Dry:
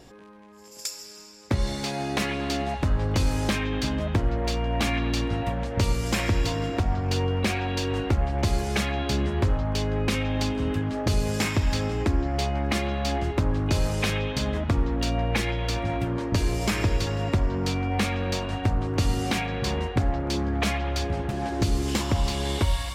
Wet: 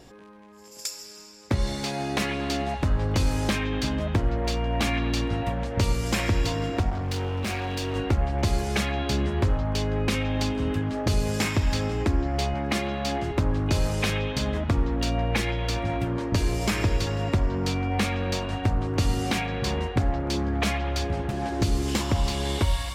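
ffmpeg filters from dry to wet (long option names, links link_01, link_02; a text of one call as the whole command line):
ffmpeg -i in.wav -filter_complex "[0:a]asettb=1/sr,asplit=3[link_01][link_02][link_03];[link_01]atrim=end=6.904[link_04];[link_02]atrim=start=6.9:end=7.96,asetpts=PTS-STARTPTS,afade=type=in:duration=0.004:curve=qsin,afade=type=out:start_time=1.056:duration=0.004:curve=qsin,volume=26dB,asoftclip=hard,volume=-26dB[link_05];[link_03]atrim=start=7.956[link_06];[link_04][link_05]acrossfade=duration=0.004:curve1=hsin:curve2=qsin[link_07];[link_07][link_06]acrossfade=duration=0.004:curve1=qsin:curve2=hsin,asettb=1/sr,asplit=3[link_08][link_09][link_10];[link_08]atrim=end=12.544[link_11];[link_09]atrim=start=12.54:end=13.31,asetpts=PTS-STARTPTS,afade=type=in:duration=0.004:curve=qsin,afade=type=out:start_time=0.766:duration=0.004:curve=qsin,highpass=frequency=81:width=0.5412,highpass=frequency=81:width=1.3066[link_12];[link_10]atrim=start=13.306[link_13];[link_11][link_12]acrossfade=duration=0.004:curve1=hsin:curve2=qsin[link_14];[link_14][link_13]acrossfade=duration=0.004:curve1=qsin:curve2=hsin" out.wav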